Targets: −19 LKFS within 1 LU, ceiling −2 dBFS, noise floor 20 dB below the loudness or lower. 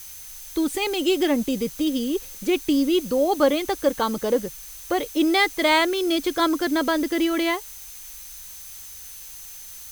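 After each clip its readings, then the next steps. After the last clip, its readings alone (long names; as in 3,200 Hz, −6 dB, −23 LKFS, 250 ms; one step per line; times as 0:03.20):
interfering tone 6,200 Hz; level of the tone −46 dBFS; background noise floor −40 dBFS; target noise floor −43 dBFS; integrated loudness −22.5 LKFS; sample peak −6.0 dBFS; target loudness −19.0 LKFS
→ notch filter 6,200 Hz, Q 30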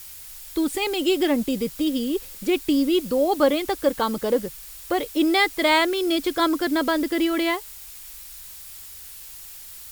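interfering tone none found; background noise floor −41 dBFS; target noise floor −43 dBFS
→ noise reduction from a noise print 6 dB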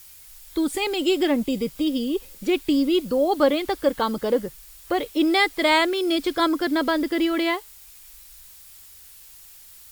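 background noise floor −47 dBFS; integrated loudness −22.5 LKFS; sample peak −6.0 dBFS; target loudness −19.0 LKFS
→ level +3.5 dB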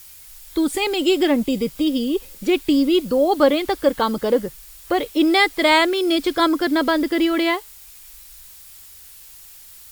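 integrated loudness −19.0 LKFS; sample peak −2.5 dBFS; background noise floor −43 dBFS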